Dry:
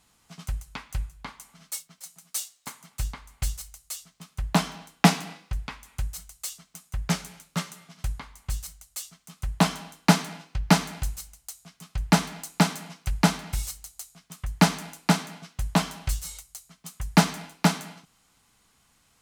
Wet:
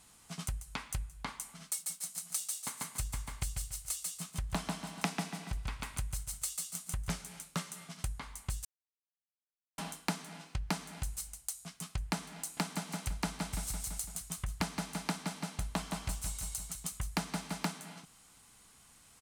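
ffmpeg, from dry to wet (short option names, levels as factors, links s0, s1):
-filter_complex "[0:a]asplit=3[s0][s1][s2];[s0]afade=t=out:st=1.78:d=0.02[s3];[s1]aecho=1:1:142|284|426:0.708|0.163|0.0375,afade=t=in:st=1.78:d=0.02,afade=t=out:st=7.21:d=0.02[s4];[s2]afade=t=in:st=7.21:d=0.02[s5];[s3][s4][s5]amix=inputs=3:normalize=0,asettb=1/sr,asplit=3[s6][s7][s8];[s6]atrim=end=12.404[s9];[s7]atrim=start=12.4:end=17.7,asetpts=PTS-STARTPTS,afade=t=in:d=0.004:c=qsin,afade=t=out:st=5.296:d=0.004:c=qsin,aecho=1:1:168|336|504|672|840:0.501|0.21|0.0884|0.0371|0.0156,atrim=end_sample=233730[s10];[s8]atrim=start=17.696[s11];[s9][s10]acrossfade=d=0.004:c1=hsin:c2=qsin[s12];[s12][s11]acrossfade=d=0.004:c1=qsin:c2=hsin,asplit=3[s13][s14][s15];[s13]atrim=end=8.65,asetpts=PTS-STARTPTS,afade=t=out:st=8.646:d=0.004:c=hsin[s16];[s14]atrim=start=8.65:end=9.78,asetpts=PTS-STARTPTS,volume=0[s17];[s15]atrim=start=9.78,asetpts=PTS-STARTPTS,afade=t=in:d=0.004:c=hsin[s18];[s16][s17][s18]concat=n=3:v=0:a=1,equalizer=f=9100:w=1.7:g=7,acompressor=threshold=0.0158:ratio=5,volume=1.19"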